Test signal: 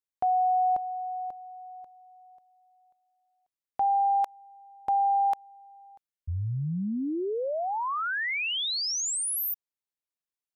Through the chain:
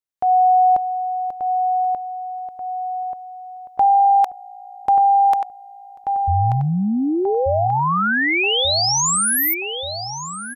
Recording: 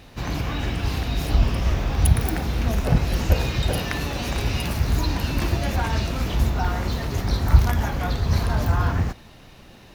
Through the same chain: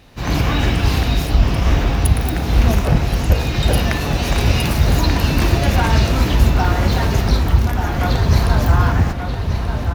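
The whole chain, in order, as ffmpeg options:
-filter_complex "[0:a]dynaudnorm=f=160:g=3:m=12dB,asplit=2[a][b];[b]adelay=1184,lowpass=f=3k:p=1,volume=-6dB,asplit=2[c][d];[d]adelay=1184,lowpass=f=3k:p=1,volume=0.49,asplit=2[e][f];[f]adelay=1184,lowpass=f=3k:p=1,volume=0.49,asplit=2[g][h];[h]adelay=1184,lowpass=f=3k:p=1,volume=0.49,asplit=2[i][j];[j]adelay=1184,lowpass=f=3k:p=1,volume=0.49,asplit=2[k][l];[l]adelay=1184,lowpass=f=3k:p=1,volume=0.49[m];[c][e][g][i][k][m]amix=inputs=6:normalize=0[n];[a][n]amix=inputs=2:normalize=0,volume=-1.5dB"

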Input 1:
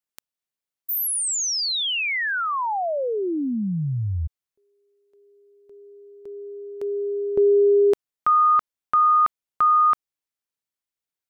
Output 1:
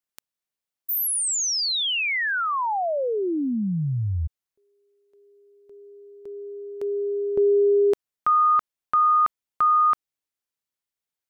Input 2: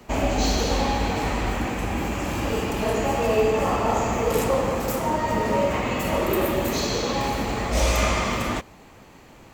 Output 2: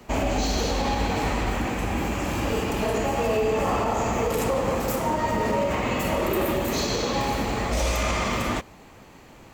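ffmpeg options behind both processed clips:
-af "alimiter=limit=-15dB:level=0:latency=1:release=45"

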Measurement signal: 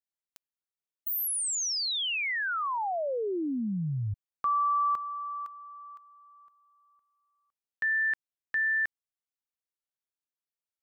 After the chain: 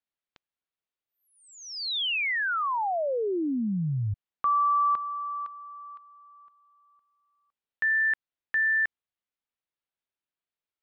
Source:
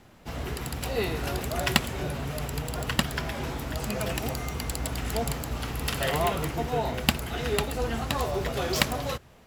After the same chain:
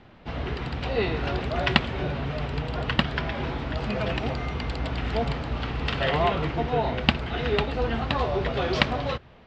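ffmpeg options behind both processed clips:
-af "lowpass=f=4k:w=0.5412,lowpass=f=4k:w=1.3066,volume=3dB"

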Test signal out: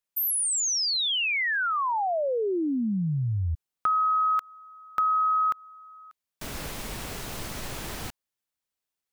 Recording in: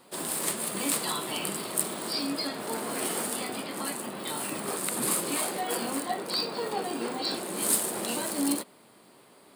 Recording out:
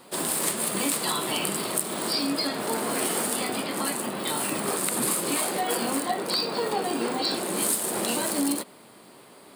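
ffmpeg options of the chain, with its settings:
-af "acompressor=threshold=-28dB:ratio=6,volume=6dB"

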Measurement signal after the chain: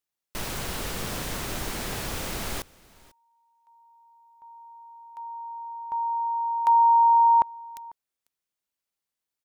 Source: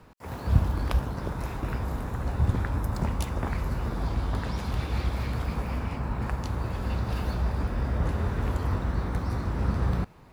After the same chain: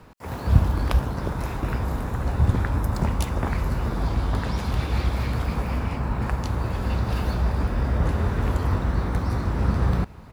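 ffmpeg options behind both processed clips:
-af "aecho=1:1:496:0.0668,volume=4.5dB"

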